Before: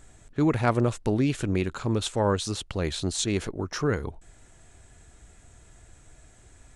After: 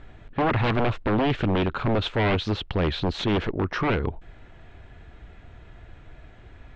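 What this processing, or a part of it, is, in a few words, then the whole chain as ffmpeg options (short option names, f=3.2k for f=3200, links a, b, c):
synthesiser wavefolder: -af "aeval=exprs='0.0668*(abs(mod(val(0)/0.0668+3,4)-2)-1)':c=same,lowpass=f=3.4k:w=0.5412,lowpass=f=3.4k:w=1.3066,volume=7dB"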